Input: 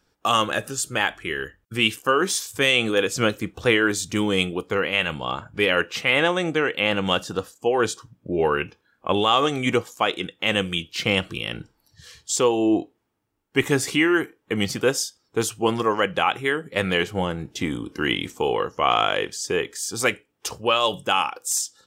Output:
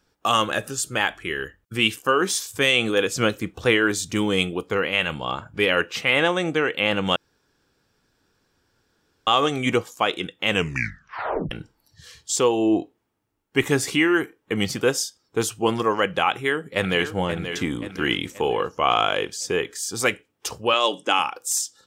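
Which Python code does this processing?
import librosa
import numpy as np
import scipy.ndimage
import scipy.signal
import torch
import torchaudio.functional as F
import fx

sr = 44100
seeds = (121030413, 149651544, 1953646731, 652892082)

y = fx.echo_throw(x, sr, start_s=16.3, length_s=0.83, ms=530, feedback_pct=50, wet_db=-9.0)
y = fx.notch(y, sr, hz=1900.0, q=10.0, at=(18.44, 19.46))
y = fx.cabinet(y, sr, low_hz=240.0, low_slope=24, high_hz=9600.0, hz=(290.0, 2100.0, 5900.0), db=(8, 4, 4), at=(20.73, 21.19))
y = fx.edit(y, sr, fx.room_tone_fill(start_s=7.16, length_s=2.11),
    fx.tape_stop(start_s=10.51, length_s=1.0), tone=tone)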